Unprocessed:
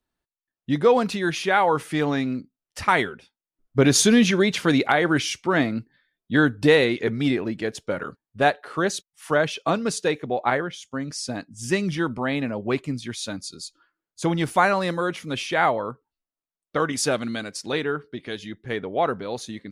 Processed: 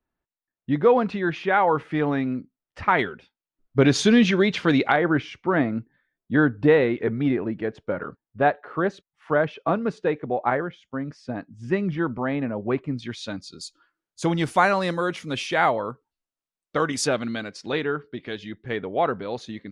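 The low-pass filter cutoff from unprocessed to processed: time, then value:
2,200 Hz
from 0:02.99 3,900 Hz
from 0:04.96 1,700 Hz
from 0:12.99 3,900 Hz
from 0:13.61 8,800 Hz
from 0:17.07 3,900 Hz

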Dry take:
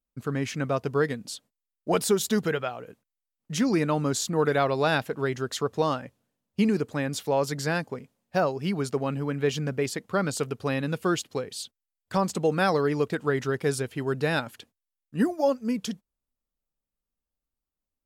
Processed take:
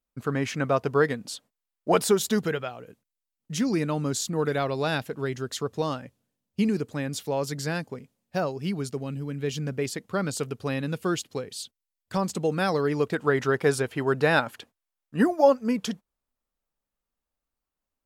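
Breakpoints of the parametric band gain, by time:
parametric band 1,000 Hz 2.7 octaves
0:02.04 +4.5 dB
0:02.74 −4.5 dB
0:08.66 −4.5 dB
0:09.19 −14 dB
0:09.78 −3 dB
0:12.68 −3 dB
0:13.51 +7 dB

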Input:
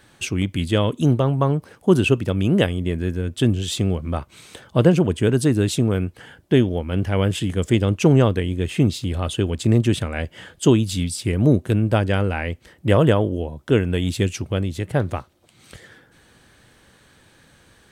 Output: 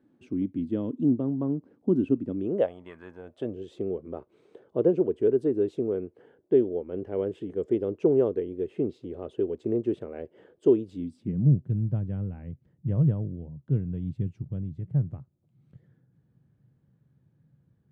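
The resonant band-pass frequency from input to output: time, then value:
resonant band-pass, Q 3.7
0:02.31 270 Hz
0:02.94 1,200 Hz
0:03.63 410 Hz
0:10.87 410 Hz
0:11.51 140 Hz

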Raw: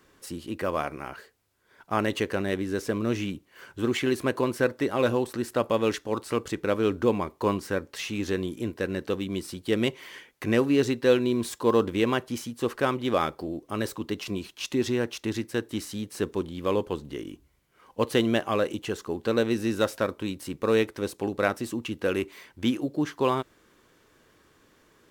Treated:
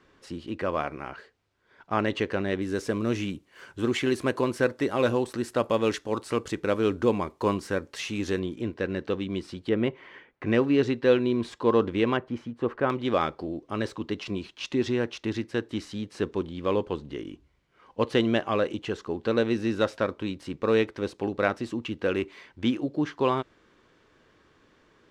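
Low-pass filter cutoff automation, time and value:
4,400 Hz
from 0:02.62 9,500 Hz
from 0:08.39 4,100 Hz
from 0:09.69 1,900 Hz
from 0:10.46 3,600 Hz
from 0:12.17 1,800 Hz
from 0:12.90 4,600 Hz

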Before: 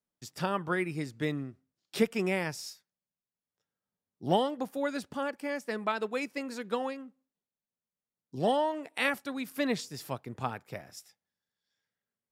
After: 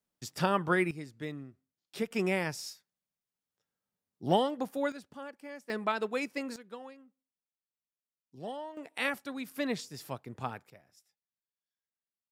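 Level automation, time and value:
+3 dB
from 0:00.91 −7.5 dB
from 0:02.11 0 dB
from 0:04.92 −10.5 dB
from 0:05.70 0 dB
from 0:06.56 −13 dB
from 0:08.77 −3 dB
from 0:10.70 −16 dB

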